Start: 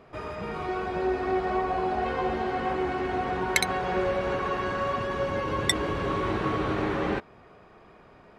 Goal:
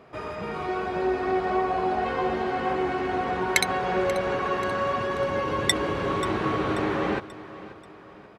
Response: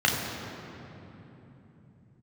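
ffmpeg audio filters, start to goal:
-filter_complex "[0:a]highpass=f=100:p=1,asplit=2[a][b];[b]aecho=0:1:535|1070|1605|2140:0.15|0.0643|0.0277|0.0119[c];[a][c]amix=inputs=2:normalize=0,volume=2dB"

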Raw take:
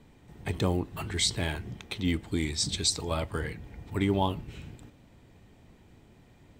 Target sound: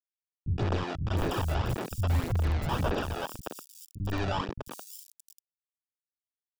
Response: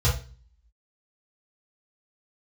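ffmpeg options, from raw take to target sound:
-filter_complex "[0:a]asettb=1/sr,asplit=3[a][b][c];[a]atrim=end=1.324[d];[b]atrim=start=1.32:end=2.63,asetpts=PTS-STARTPTS,afade=t=in:d=0.004:c=qsin,afade=t=out:st=1.306:d=0.004:c=qsin,asubboost=boost=10.5:cutoff=130[e];[c]atrim=start=2.626[f];[d][e]acrossfade=d=0.004:c1=hsin:c2=qsin[g];[g][f]acrossfade=d=0.004:c1=qsin:c2=hsin,alimiter=limit=-18dB:level=0:latency=1:release=317,asettb=1/sr,asplit=3[h][i][j];[h]atrim=end=3.134[k];[i]atrim=start=3.13:end=4,asetpts=PTS-STARTPTS,afade=t=in:d=0.004:c=qsin,afade=t=out:st=0.866:d=0.004:c=qsin,acrossover=split=380|1500|3100[l][m][n][o];[l]acompressor=threshold=-46dB:ratio=4[p];[m]acompressor=threshold=-49dB:ratio=4[q];[n]acompressor=threshold=-53dB:ratio=4[r];[o]acompressor=threshold=-60dB:ratio=4[s];[p][q][r][s]amix=inputs=4:normalize=0[t];[j]atrim=start=3.996[u];[k][t]acrossfade=d=0.004:c1=hsin:c2=qsin[v];[v][u]acrossfade=d=0.004:c1=qsin:c2=hsin,acrusher=samples=21:mix=1:aa=0.000001,asoftclip=type=tanh:threshold=-25dB,acrusher=bits=5:mix=0:aa=0.000001,volume=30dB,asoftclip=hard,volume=-30dB,aphaser=in_gain=1:out_gain=1:delay=1.5:decay=0.45:speed=1.8:type=sinusoidal,acrossover=split=200|5700[w][x][y];[x]adelay=120[z];[y]adelay=710[aa];[w][z][aa]amix=inputs=3:normalize=0,adynamicequalizer=threshold=0.00178:dfrequency=5600:dqfactor=0.7:tfrequency=5600:tqfactor=0.7:attack=5:release=100:ratio=0.375:range=1.5:mode=cutabove:tftype=highshelf,volume=3dB"

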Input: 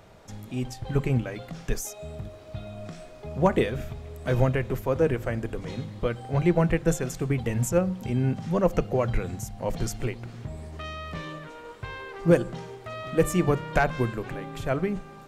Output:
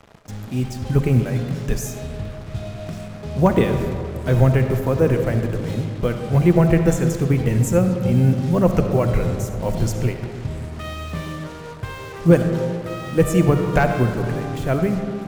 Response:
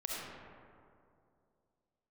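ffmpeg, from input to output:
-filter_complex "[0:a]equalizer=f=120:w=0.48:g=6,acrusher=bits=6:mix=0:aa=0.5,asplit=2[a][b];[1:a]atrim=start_sample=2205[c];[b][c]afir=irnorm=-1:irlink=0,volume=-4.5dB[d];[a][d]amix=inputs=2:normalize=0"

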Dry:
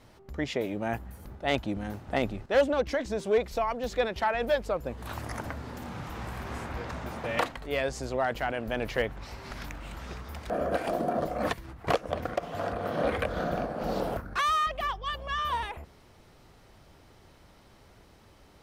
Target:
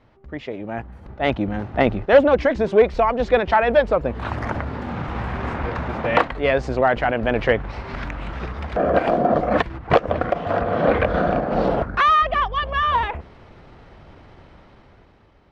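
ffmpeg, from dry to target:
-af "dynaudnorm=f=320:g=9:m=11.5dB,atempo=1.2,lowpass=2.7k"

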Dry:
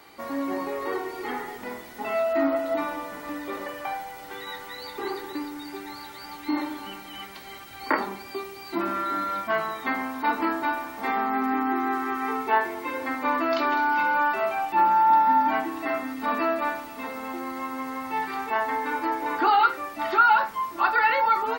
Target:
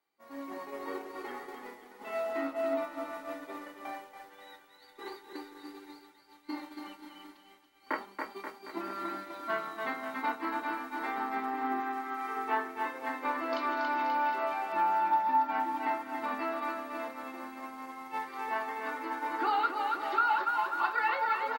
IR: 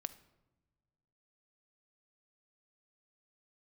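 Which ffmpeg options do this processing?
-filter_complex "[0:a]aecho=1:1:280|532|758.8|962.9|1147:0.631|0.398|0.251|0.158|0.1,acompressor=threshold=-27dB:ratio=2.5,equalizer=f=78:w=0.77:g=-12,agate=range=-33dB:threshold=-23dB:ratio=3:detection=peak,asettb=1/sr,asplit=3[a][b][c];[a]atrim=end=11.804[d];[b]atrim=start=11.8:end=12.37,asetpts=PTS-STARTPTS,afade=t=in:d=0.004:c=qsin,afade=t=out:st=0.566:d=0.004:c=qsin,lowshelf=f=400:g=-8[e];[c]atrim=start=12.366[f];[d][e]acrossfade=d=0.004:c1=hsin:c2=qsin[g];[g][f]acrossfade=d=0.004:c1=qsin:c2=hsin"

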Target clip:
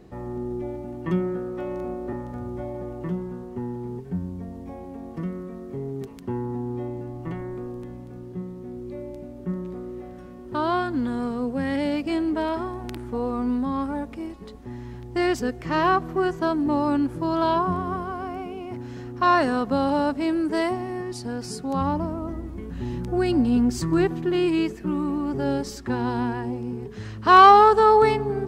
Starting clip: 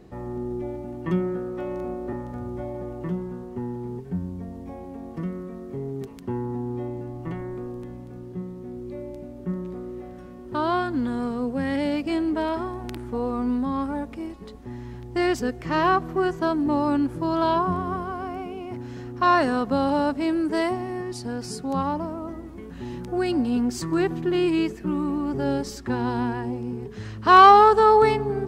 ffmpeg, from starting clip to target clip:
-filter_complex "[0:a]asettb=1/sr,asplit=3[a][b][c];[a]atrim=end=21.814[d];[b]atrim=start=21.81:end=24.07,asetpts=PTS-STARTPTS,afade=t=in:d=0.004:c=qsin,afade=t=out:st=2.256:d=0.004:c=qsin,lowshelf=f=160:g=10.5[e];[c]atrim=start=24.066[f];[d][e]acrossfade=d=0.004:c1=hsin:c2=qsin[g];[g][f]acrossfade=d=0.004:c1=qsin:c2=hsin"

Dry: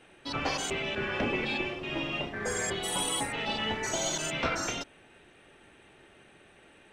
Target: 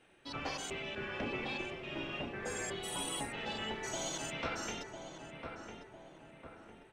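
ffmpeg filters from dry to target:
-filter_complex "[0:a]asplit=2[a][b];[b]adelay=1002,lowpass=f=1.6k:p=1,volume=-5.5dB,asplit=2[c][d];[d]adelay=1002,lowpass=f=1.6k:p=1,volume=0.51,asplit=2[e][f];[f]adelay=1002,lowpass=f=1.6k:p=1,volume=0.51,asplit=2[g][h];[h]adelay=1002,lowpass=f=1.6k:p=1,volume=0.51,asplit=2[i][j];[j]adelay=1002,lowpass=f=1.6k:p=1,volume=0.51,asplit=2[k][l];[l]adelay=1002,lowpass=f=1.6k:p=1,volume=0.51[m];[a][c][e][g][i][k][m]amix=inputs=7:normalize=0,volume=-8.5dB"

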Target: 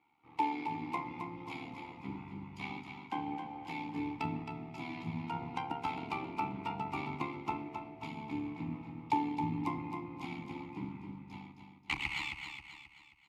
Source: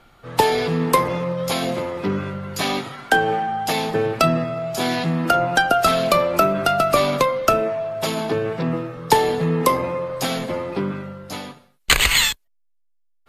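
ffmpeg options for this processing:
-filter_complex "[0:a]highpass=55,equalizer=f=320:t=o:w=0.99:g=-13.5,bandreject=f=60:t=h:w=6,bandreject=f=120:t=h:w=6,bandreject=f=180:t=h:w=6,bandreject=f=240:t=h:w=6,bandreject=f=300:t=h:w=6,bandreject=f=360:t=h:w=6,bandreject=f=420:t=h:w=6,bandreject=f=480:t=h:w=6,bandreject=f=540:t=h:w=6,bandreject=f=600:t=h:w=6,asplit=2[a][b];[b]asetrate=29433,aresample=44100,atempo=1.49831,volume=-6dB[c];[a][c]amix=inputs=2:normalize=0,tremolo=f=72:d=0.71,asplit=3[d][e][f];[d]bandpass=f=300:t=q:w=8,volume=0dB[g];[e]bandpass=f=870:t=q:w=8,volume=-6dB[h];[f]bandpass=f=2.24k:t=q:w=8,volume=-9dB[i];[g][h][i]amix=inputs=3:normalize=0,asubboost=boost=4.5:cutoff=200,asplit=2[j][k];[k]aecho=0:1:267|534|801|1068|1335:0.447|0.197|0.0865|0.0381|0.0167[l];[j][l]amix=inputs=2:normalize=0,volume=-1dB"

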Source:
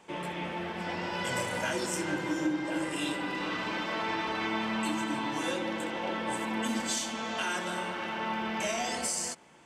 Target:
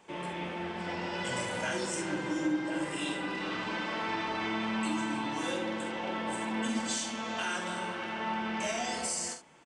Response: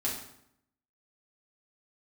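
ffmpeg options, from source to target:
-filter_complex "[0:a]asplit=2[a][b];[b]aecho=0:1:46|72:0.398|0.251[c];[a][c]amix=inputs=2:normalize=0,aresample=22050,aresample=44100,volume=-2.5dB"

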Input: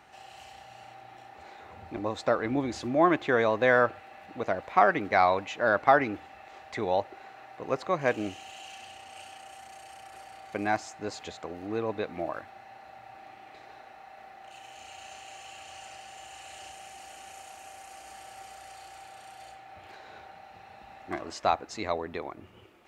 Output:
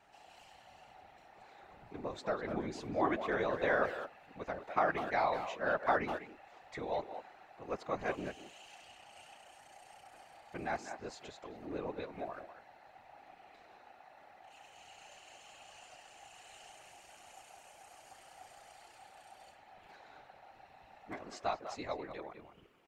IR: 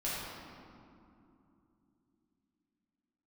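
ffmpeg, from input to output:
-filter_complex "[0:a]asplit=2[a][b];[b]adelay=200,highpass=300,lowpass=3.4k,asoftclip=type=hard:threshold=-16dB,volume=-9dB[c];[a][c]amix=inputs=2:normalize=0,afftfilt=real='hypot(re,im)*cos(2*PI*random(0))':imag='hypot(re,im)*sin(2*PI*random(1))':win_size=512:overlap=0.75,volume=-3.5dB"

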